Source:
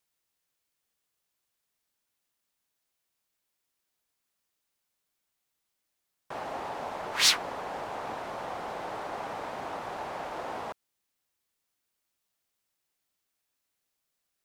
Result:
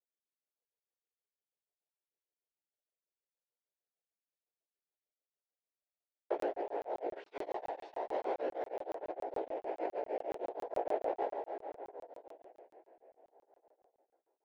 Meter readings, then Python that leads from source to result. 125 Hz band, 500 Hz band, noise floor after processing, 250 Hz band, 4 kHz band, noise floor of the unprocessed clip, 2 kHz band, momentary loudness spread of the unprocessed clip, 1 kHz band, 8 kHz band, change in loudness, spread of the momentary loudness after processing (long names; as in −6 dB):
below −15 dB, +2.5 dB, below −85 dBFS, −1.0 dB, below −30 dB, −82 dBFS, −16.5 dB, 15 LU, −5.0 dB, below −30 dB, −8.0 dB, 13 LU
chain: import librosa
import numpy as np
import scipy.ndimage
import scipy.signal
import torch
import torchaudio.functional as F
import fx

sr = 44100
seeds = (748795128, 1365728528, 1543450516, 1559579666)

p1 = fx.fixed_phaser(x, sr, hz=490.0, stages=4)
p2 = fx.leveller(p1, sr, passes=2)
p3 = fx.rotary(p2, sr, hz=1.0)
p4 = fx.leveller(p3, sr, passes=2)
p5 = scipy.signal.sosfilt(scipy.signal.butter(4, 320.0, 'highpass', fs=sr, output='sos'), p4)
p6 = p5 + fx.echo_single(p5, sr, ms=595, db=-5.5, dry=0)
p7 = fx.rev_plate(p6, sr, seeds[0], rt60_s=4.9, hf_ratio=0.85, predelay_ms=0, drr_db=11.0)
p8 = fx.chorus_voices(p7, sr, voices=2, hz=0.22, base_ms=16, depth_ms=1.2, mix_pct=55)
p9 = fx.over_compress(p8, sr, threshold_db=-37.0, ratio=-1.0)
p10 = scipy.signal.sosfilt(scipy.signal.butter(2, 1100.0, 'lowpass', fs=sr, output='sos'), p9)
p11 = fx.buffer_crackle(p10, sr, first_s=0.66, period_s=0.14, block=1024, kind='zero')
p12 = p11 * np.abs(np.cos(np.pi * 6.5 * np.arange(len(p11)) / sr))
y = p12 * 10.0 ** (2.0 / 20.0)